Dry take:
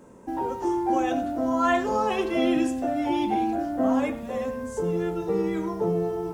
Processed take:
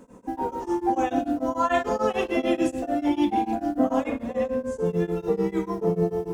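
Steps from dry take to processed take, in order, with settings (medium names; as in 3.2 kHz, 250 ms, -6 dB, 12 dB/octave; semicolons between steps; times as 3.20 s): 4.04–4.86 s: treble shelf 7.7 kHz -8.5 dB; reverberation RT60 0.85 s, pre-delay 4 ms, DRR 4 dB; tremolo of two beating tones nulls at 6.8 Hz; trim +1.5 dB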